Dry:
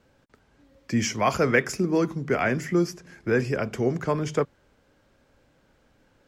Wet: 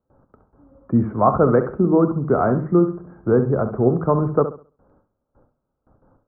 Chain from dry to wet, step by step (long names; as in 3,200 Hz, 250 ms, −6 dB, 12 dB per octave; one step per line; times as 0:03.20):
Chebyshev low-pass filter 1,300 Hz, order 5
noise gate with hold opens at −53 dBFS
on a send: flutter between parallel walls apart 11.5 metres, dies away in 0.37 s
on the sum: level +7.5 dB